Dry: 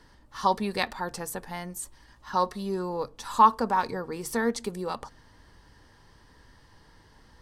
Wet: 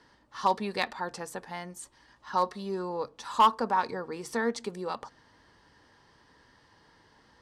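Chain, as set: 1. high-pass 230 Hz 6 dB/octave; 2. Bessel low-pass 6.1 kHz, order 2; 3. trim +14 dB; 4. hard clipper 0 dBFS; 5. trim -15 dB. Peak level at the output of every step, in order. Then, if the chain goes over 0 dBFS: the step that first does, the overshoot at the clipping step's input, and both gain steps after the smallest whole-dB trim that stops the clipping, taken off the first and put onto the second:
-7.5 dBFS, -7.5 dBFS, +6.5 dBFS, 0.0 dBFS, -15.0 dBFS; step 3, 6.5 dB; step 3 +7 dB, step 5 -8 dB

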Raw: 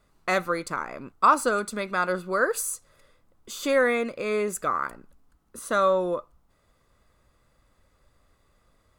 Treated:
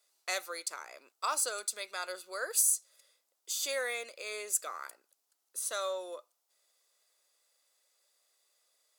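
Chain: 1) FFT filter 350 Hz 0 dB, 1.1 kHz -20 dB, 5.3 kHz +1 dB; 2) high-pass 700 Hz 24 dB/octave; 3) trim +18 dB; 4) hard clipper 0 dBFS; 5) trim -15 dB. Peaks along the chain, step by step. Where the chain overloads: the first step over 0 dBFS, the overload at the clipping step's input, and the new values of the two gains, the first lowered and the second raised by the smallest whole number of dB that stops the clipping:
-15.0 dBFS, -15.0 dBFS, +3.0 dBFS, 0.0 dBFS, -15.0 dBFS; step 3, 3.0 dB; step 3 +15 dB, step 5 -12 dB

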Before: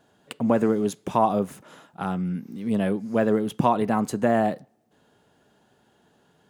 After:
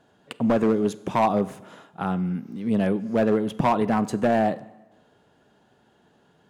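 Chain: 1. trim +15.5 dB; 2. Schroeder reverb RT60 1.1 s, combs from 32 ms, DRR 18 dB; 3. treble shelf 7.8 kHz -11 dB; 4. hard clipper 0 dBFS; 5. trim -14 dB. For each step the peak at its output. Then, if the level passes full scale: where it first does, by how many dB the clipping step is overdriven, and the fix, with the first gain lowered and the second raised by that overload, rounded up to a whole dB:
+9.0 dBFS, +9.0 dBFS, +9.0 dBFS, 0.0 dBFS, -14.0 dBFS; step 1, 9.0 dB; step 1 +6.5 dB, step 5 -5 dB

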